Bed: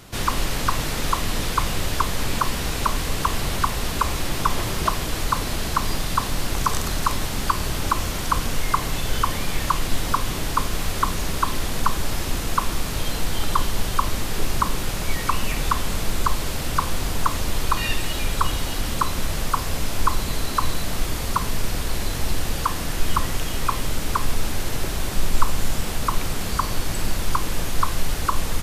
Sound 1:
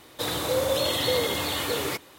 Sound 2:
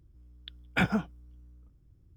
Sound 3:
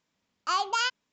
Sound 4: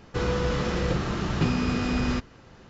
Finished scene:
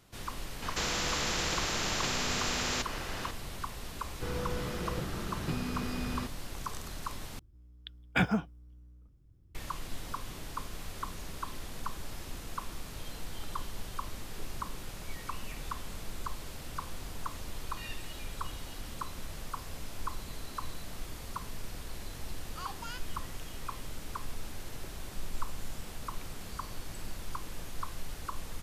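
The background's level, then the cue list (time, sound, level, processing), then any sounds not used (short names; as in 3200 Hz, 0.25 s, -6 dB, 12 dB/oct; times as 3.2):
bed -17 dB
0.62 add 4 -6.5 dB + spectral compressor 4:1
4.07 add 4 -10.5 dB
7.39 replace with 2 -1 dB
22.09 add 3 -17 dB
not used: 1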